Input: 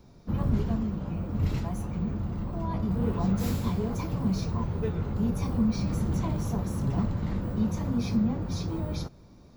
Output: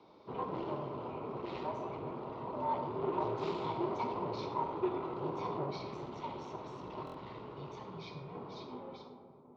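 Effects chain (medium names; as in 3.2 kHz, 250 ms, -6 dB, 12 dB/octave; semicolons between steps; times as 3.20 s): fade out at the end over 2.23 s; 5.70–8.35 s: peaking EQ 570 Hz -9.5 dB 2.9 oct; saturation -27 dBFS, distortion -11 dB; frequency shift -76 Hz; cabinet simulation 330–3900 Hz, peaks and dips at 390 Hz +6 dB, 1 kHz +9 dB, 1.7 kHz -10 dB; feedback echo behind a low-pass 378 ms, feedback 68%, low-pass 930 Hz, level -12 dB; algorithmic reverb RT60 1.4 s, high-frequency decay 0.4×, pre-delay 25 ms, DRR 6.5 dB; buffer glitch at 7.05 s, samples 1024, times 3; trim +1 dB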